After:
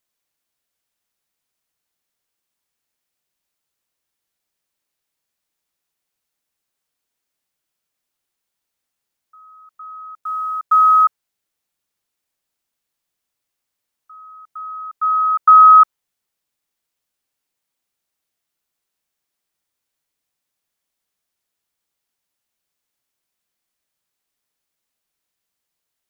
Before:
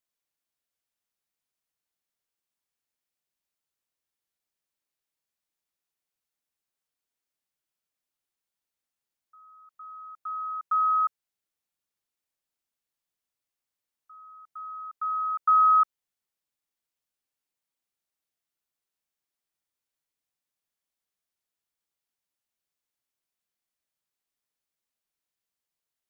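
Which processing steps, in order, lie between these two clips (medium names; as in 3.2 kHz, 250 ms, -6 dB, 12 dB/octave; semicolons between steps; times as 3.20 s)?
10.21–11.04 s: companded quantiser 8-bit; dynamic bell 1.1 kHz, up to +4 dB, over -33 dBFS, Q 1.2; trim +8.5 dB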